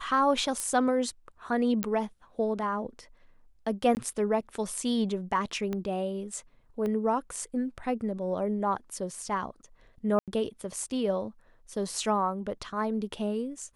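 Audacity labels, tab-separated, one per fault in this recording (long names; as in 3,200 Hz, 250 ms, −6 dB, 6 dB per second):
0.600000	0.600000	click −18 dBFS
1.830000	1.830000	click −13 dBFS
3.950000	3.970000	drop-out 19 ms
5.730000	5.730000	click −20 dBFS
6.860000	6.860000	click −22 dBFS
10.190000	10.280000	drop-out 87 ms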